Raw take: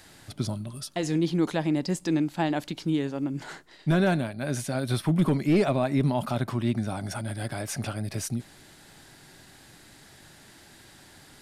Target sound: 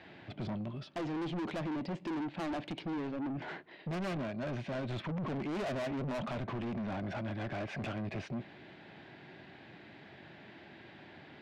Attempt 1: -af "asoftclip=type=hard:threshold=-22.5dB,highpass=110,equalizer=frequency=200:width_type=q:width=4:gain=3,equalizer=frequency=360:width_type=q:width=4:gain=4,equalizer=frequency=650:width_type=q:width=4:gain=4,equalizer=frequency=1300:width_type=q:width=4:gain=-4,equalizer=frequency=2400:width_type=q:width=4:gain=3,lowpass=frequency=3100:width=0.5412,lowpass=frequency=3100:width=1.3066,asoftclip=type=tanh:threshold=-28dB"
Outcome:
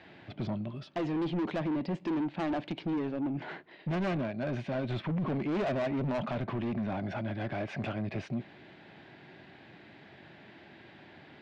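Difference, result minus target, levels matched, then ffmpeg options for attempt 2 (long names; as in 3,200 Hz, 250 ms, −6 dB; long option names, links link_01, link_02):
soft clipping: distortion −4 dB
-af "asoftclip=type=hard:threshold=-22.5dB,highpass=110,equalizer=frequency=200:width_type=q:width=4:gain=3,equalizer=frequency=360:width_type=q:width=4:gain=4,equalizer=frequency=650:width_type=q:width=4:gain=4,equalizer=frequency=1300:width_type=q:width=4:gain=-4,equalizer=frequency=2400:width_type=q:width=4:gain=3,lowpass=frequency=3100:width=0.5412,lowpass=frequency=3100:width=1.3066,asoftclip=type=tanh:threshold=-34.5dB"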